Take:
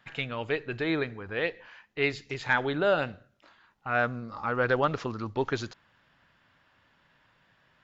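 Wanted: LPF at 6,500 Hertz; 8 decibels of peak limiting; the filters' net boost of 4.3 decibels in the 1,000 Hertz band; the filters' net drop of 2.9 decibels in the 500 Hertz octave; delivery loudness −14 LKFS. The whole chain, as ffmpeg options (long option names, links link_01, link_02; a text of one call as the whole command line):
ffmpeg -i in.wav -af "lowpass=6500,equalizer=frequency=500:width_type=o:gain=-5.5,equalizer=frequency=1000:width_type=o:gain=7.5,volume=17dB,alimiter=limit=0dB:level=0:latency=1" out.wav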